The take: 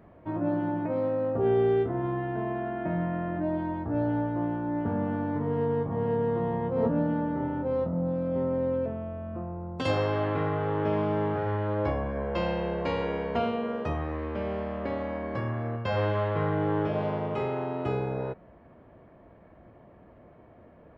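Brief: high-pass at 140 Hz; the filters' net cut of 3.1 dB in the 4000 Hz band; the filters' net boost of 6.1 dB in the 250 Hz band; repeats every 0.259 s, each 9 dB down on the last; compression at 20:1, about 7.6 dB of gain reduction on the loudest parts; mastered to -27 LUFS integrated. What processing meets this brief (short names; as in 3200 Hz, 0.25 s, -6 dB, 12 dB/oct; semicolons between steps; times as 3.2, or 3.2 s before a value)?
HPF 140 Hz; bell 250 Hz +8.5 dB; bell 4000 Hz -4.5 dB; compressor 20:1, threshold -24 dBFS; feedback echo 0.259 s, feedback 35%, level -9 dB; gain +2 dB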